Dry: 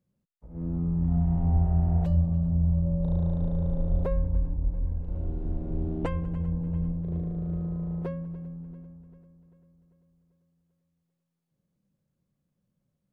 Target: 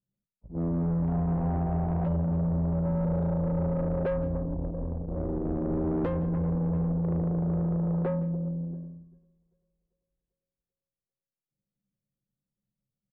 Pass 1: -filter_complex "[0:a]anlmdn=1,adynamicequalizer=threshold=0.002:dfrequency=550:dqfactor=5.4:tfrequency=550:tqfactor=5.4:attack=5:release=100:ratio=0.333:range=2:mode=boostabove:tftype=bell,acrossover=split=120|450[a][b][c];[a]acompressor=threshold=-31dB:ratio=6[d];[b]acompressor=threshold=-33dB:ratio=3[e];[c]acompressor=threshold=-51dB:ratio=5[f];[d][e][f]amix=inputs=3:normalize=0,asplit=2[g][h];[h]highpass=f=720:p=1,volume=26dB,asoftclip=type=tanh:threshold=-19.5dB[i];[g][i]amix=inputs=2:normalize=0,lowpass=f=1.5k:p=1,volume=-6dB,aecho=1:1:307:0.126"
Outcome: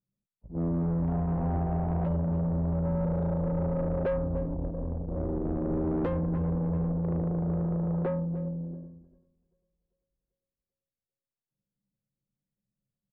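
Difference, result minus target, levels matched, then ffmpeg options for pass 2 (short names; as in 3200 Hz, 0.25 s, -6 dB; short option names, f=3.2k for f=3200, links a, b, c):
echo 0.141 s late
-filter_complex "[0:a]anlmdn=1,adynamicequalizer=threshold=0.002:dfrequency=550:dqfactor=5.4:tfrequency=550:tqfactor=5.4:attack=5:release=100:ratio=0.333:range=2:mode=boostabove:tftype=bell,acrossover=split=120|450[a][b][c];[a]acompressor=threshold=-31dB:ratio=6[d];[b]acompressor=threshold=-33dB:ratio=3[e];[c]acompressor=threshold=-51dB:ratio=5[f];[d][e][f]amix=inputs=3:normalize=0,asplit=2[g][h];[h]highpass=f=720:p=1,volume=26dB,asoftclip=type=tanh:threshold=-19.5dB[i];[g][i]amix=inputs=2:normalize=0,lowpass=f=1.5k:p=1,volume=-6dB,aecho=1:1:166:0.126"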